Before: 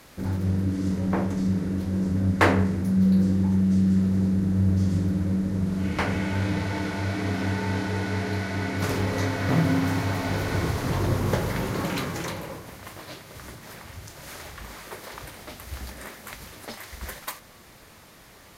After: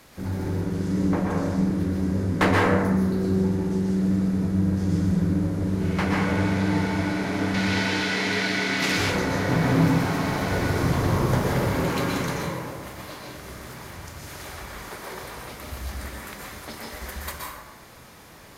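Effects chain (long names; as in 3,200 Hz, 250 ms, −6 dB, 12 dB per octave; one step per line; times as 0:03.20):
tube saturation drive 11 dB, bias 0.4
0:07.54–0:08.97: meter weighting curve D
dense smooth reverb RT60 1.2 s, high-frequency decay 0.45×, pre-delay 110 ms, DRR −2.5 dB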